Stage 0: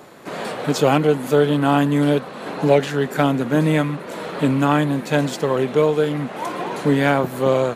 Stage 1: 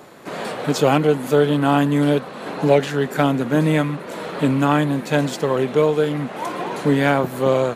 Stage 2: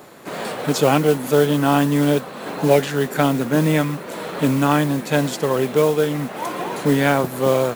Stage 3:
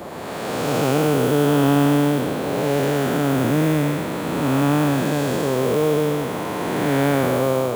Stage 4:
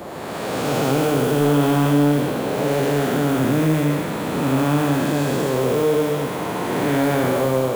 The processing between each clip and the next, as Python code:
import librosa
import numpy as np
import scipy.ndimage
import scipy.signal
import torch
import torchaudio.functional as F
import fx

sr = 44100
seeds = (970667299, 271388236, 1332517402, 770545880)

y1 = x
y2 = fx.high_shelf(y1, sr, hz=8200.0, db=6.0)
y2 = fx.mod_noise(y2, sr, seeds[0], snr_db=20)
y3 = fx.spec_blur(y2, sr, span_ms=455.0)
y3 = fx.dmg_noise_band(y3, sr, seeds[1], low_hz=74.0, high_hz=950.0, level_db=-37.0)
y3 = F.gain(torch.from_numpy(y3), 2.0).numpy()
y4 = y3 + 10.0 ** (-5.5 / 20.0) * np.pad(y3, (int(76 * sr / 1000.0), 0))[:len(y3)]
y4 = 10.0 ** (-9.0 / 20.0) * np.tanh(y4 / 10.0 ** (-9.0 / 20.0))